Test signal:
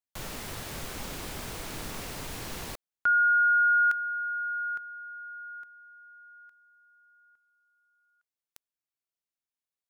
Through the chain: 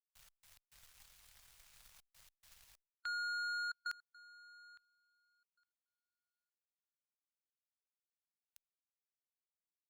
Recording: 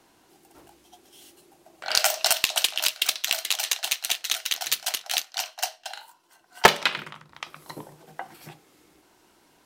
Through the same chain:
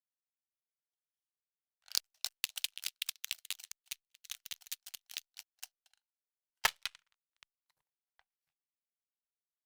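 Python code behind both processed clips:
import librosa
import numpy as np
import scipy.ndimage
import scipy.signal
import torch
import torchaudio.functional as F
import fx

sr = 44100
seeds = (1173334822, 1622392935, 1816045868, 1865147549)

y = fx.step_gate(x, sr, bpm=105, pattern='xx.x.xxxxxxx', floor_db=-24.0, edge_ms=4.5)
y = fx.power_curve(y, sr, exponent=2.0)
y = fx.hpss(y, sr, part='harmonic', gain_db=-3)
y = fx.tone_stack(y, sr, knobs='10-0-10')
y = y * 10.0 ** (-7.0 / 20.0)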